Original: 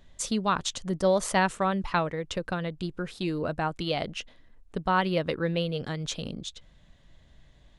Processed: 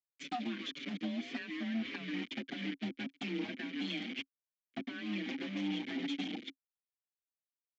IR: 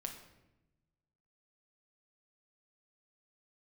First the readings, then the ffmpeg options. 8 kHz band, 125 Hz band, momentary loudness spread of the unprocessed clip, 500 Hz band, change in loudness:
under -20 dB, -16.0 dB, 11 LU, -19.5 dB, -10.5 dB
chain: -filter_complex "[0:a]aecho=1:1:1.2:0.78,asplit=2[s0][s1];[s1]asplit=4[s2][s3][s4][s5];[s2]adelay=136,afreqshift=100,volume=0.316[s6];[s3]adelay=272,afreqshift=200,volume=0.114[s7];[s4]adelay=408,afreqshift=300,volume=0.0412[s8];[s5]adelay=544,afreqshift=400,volume=0.0148[s9];[s6][s7][s8][s9]amix=inputs=4:normalize=0[s10];[s0][s10]amix=inputs=2:normalize=0,acrusher=bits=4:mix=0:aa=0.000001,agate=range=0.0224:threshold=0.0447:ratio=3:detection=peak,afreqshift=27,acompressor=threshold=0.0282:ratio=6,asplit=3[s11][s12][s13];[s11]bandpass=f=270:t=q:w=8,volume=1[s14];[s12]bandpass=f=2290:t=q:w=8,volume=0.501[s15];[s13]bandpass=f=3010:t=q:w=8,volume=0.355[s16];[s14][s15][s16]amix=inputs=3:normalize=0,aresample=16000,aeval=exprs='0.0251*sin(PI/2*2.82*val(0)/0.0251)':c=same,aresample=44100,acompressor=mode=upward:threshold=0.00316:ratio=2.5,highpass=180,lowpass=4500,asplit=2[s17][s18];[s18]adelay=5.8,afreqshift=1.7[s19];[s17][s19]amix=inputs=2:normalize=1,volume=1.41"

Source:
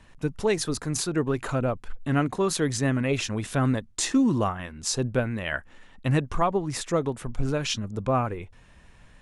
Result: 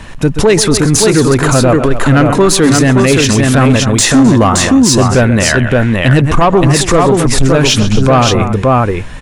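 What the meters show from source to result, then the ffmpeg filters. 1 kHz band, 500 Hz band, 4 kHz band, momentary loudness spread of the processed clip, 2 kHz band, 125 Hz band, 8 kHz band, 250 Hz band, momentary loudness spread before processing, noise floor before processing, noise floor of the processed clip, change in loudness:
+17.5 dB, +17.5 dB, +19.0 dB, 3 LU, +18.5 dB, +18.5 dB, +19.0 dB, +18.0 dB, 8 LU, -53 dBFS, -19 dBFS, +17.5 dB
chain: -filter_complex "[0:a]asplit=2[s0][s1];[s1]aecho=0:1:129|259|570:0.15|0.141|0.562[s2];[s0][s2]amix=inputs=2:normalize=0,asoftclip=type=tanh:threshold=0.119,alimiter=level_in=17.8:limit=0.891:release=50:level=0:latency=1,volume=0.891"

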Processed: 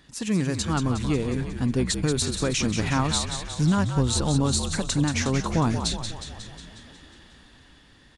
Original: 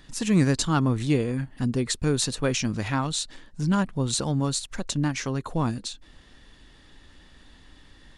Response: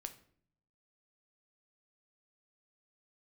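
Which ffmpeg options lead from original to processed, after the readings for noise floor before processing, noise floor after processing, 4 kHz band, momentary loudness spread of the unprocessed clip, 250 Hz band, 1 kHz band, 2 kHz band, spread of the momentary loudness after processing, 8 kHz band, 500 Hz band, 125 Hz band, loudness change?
-53 dBFS, -54 dBFS, +2.5 dB, 8 LU, +0.5 dB, +1.5 dB, +1.5 dB, 8 LU, +2.0 dB, +0.5 dB, +1.5 dB, +1.0 dB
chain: -filter_complex "[0:a]highpass=51,dynaudnorm=f=340:g=11:m=3.76,alimiter=limit=0.251:level=0:latency=1:release=243,asplit=2[s0][s1];[s1]asplit=8[s2][s3][s4][s5][s6][s7][s8][s9];[s2]adelay=181,afreqshift=-57,volume=0.422[s10];[s3]adelay=362,afreqshift=-114,volume=0.26[s11];[s4]adelay=543,afreqshift=-171,volume=0.162[s12];[s5]adelay=724,afreqshift=-228,volume=0.1[s13];[s6]adelay=905,afreqshift=-285,volume=0.0624[s14];[s7]adelay=1086,afreqshift=-342,volume=0.0385[s15];[s8]adelay=1267,afreqshift=-399,volume=0.024[s16];[s9]adelay=1448,afreqshift=-456,volume=0.0148[s17];[s10][s11][s12][s13][s14][s15][s16][s17]amix=inputs=8:normalize=0[s18];[s0][s18]amix=inputs=2:normalize=0,volume=0.75"

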